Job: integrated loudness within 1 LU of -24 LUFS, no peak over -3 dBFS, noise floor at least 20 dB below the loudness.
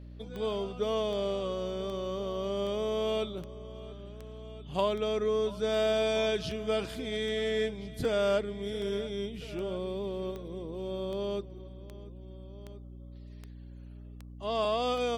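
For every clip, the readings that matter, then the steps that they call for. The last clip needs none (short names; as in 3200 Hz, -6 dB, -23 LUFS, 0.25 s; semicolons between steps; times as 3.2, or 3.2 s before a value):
clicks 20; hum 60 Hz; harmonics up to 300 Hz; hum level -44 dBFS; loudness -32.0 LUFS; peak -15.0 dBFS; loudness target -24.0 LUFS
-> de-click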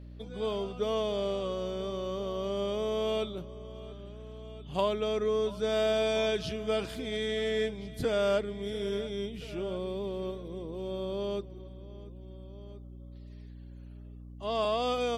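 clicks 0; hum 60 Hz; harmonics up to 300 Hz; hum level -44 dBFS
-> notches 60/120/180/240/300 Hz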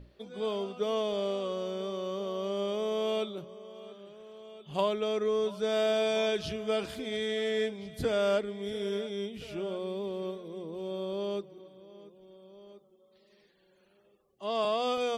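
hum none; loudness -32.5 LUFS; peak -14.5 dBFS; loudness target -24.0 LUFS
-> gain +8.5 dB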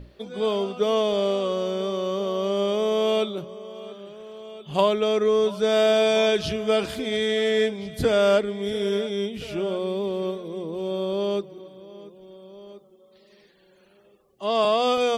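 loudness -24.0 LUFS; peak -6.0 dBFS; noise floor -57 dBFS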